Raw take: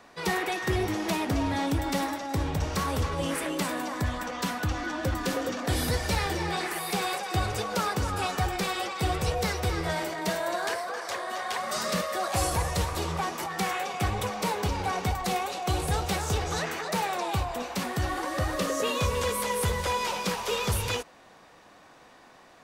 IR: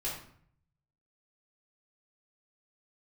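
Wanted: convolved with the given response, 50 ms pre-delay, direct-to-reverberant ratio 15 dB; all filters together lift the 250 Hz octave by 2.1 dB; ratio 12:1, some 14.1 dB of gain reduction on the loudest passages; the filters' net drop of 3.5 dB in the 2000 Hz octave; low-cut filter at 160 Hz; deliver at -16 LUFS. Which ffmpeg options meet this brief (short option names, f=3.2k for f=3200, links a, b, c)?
-filter_complex "[0:a]highpass=160,equalizer=f=250:t=o:g=4,equalizer=f=2k:t=o:g=-4.5,acompressor=threshold=-38dB:ratio=12,asplit=2[a][b];[1:a]atrim=start_sample=2205,adelay=50[c];[b][c]afir=irnorm=-1:irlink=0,volume=-18.5dB[d];[a][d]amix=inputs=2:normalize=0,volume=25.5dB"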